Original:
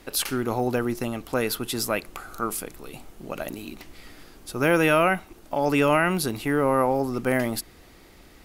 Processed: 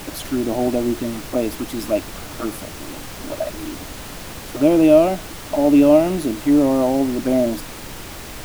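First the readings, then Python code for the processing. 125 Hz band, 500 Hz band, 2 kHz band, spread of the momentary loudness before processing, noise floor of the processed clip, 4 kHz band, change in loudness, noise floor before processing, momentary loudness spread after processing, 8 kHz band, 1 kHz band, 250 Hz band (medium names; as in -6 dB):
+1.0 dB, +6.5 dB, -6.5 dB, 20 LU, -34 dBFS, +0.5 dB, +6.0 dB, -51 dBFS, 20 LU, +0.5 dB, -1.0 dB, +10.0 dB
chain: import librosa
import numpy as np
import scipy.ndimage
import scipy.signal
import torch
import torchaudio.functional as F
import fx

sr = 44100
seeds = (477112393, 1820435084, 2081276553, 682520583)

y = fx.env_flanger(x, sr, rest_ms=7.0, full_db=-21.5)
y = fx.small_body(y, sr, hz=(300.0, 610.0), ring_ms=35, db=18)
y = fx.dmg_noise_colour(y, sr, seeds[0], colour='pink', level_db=-29.0)
y = F.gain(torch.from_numpy(y), -4.5).numpy()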